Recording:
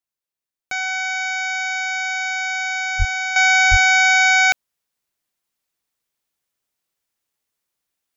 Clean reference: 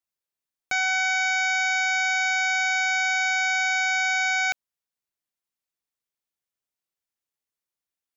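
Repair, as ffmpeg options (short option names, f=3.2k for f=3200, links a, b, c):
-filter_complex "[0:a]asplit=3[a][b][c];[a]afade=t=out:st=2.98:d=0.02[d];[b]highpass=f=140:w=0.5412,highpass=f=140:w=1.3066,afade=t=in:st=2.98:d=0.02,afade=t=out:st=3.1:d=0.02[e];[c]afade=t=in:st=3.1:d=0.02[f];[d][e][f]amix=inputs=3:normalize=0,asplit=3[g][h][i];[g]afade=t=out:st=3.7:d=0.02[j];[h]highpass=f=140:w=0.5412,highpass=f=140:w=1.3066,afade=t=in:st=3.7:d=0.02,afade=t=out:st=3.82:d=0.02[k];[i]afade=t=in:st=3.82:d=0.02[l];[j][k][l]amix=inputs=3:normalize=0,asetnsamples=n=441:p=0,asendcmd='3.36 volume volume -9.5dB',volume=0dB"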